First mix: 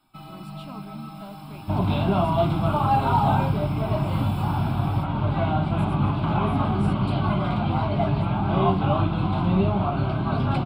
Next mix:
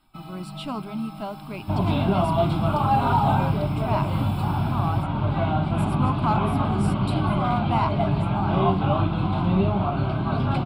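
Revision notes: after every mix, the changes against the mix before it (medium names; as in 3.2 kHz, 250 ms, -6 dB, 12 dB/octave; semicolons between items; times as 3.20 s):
speech +10.5 dB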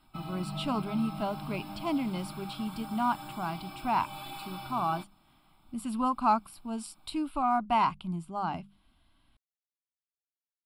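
second sound: muted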